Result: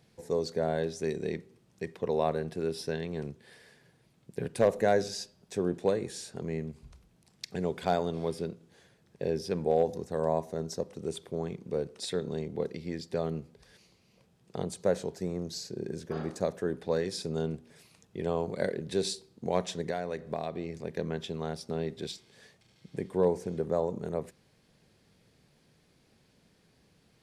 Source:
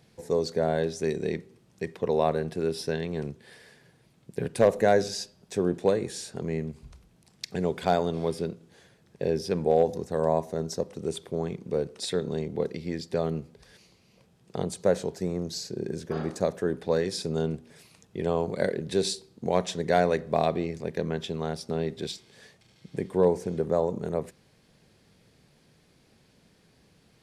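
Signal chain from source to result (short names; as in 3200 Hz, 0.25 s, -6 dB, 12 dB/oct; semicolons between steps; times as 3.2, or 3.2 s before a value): 19.81–20.9 compressor 6:1, threshold -26 dBFS, peak gain reduction 9.5 dB; gain -4 dB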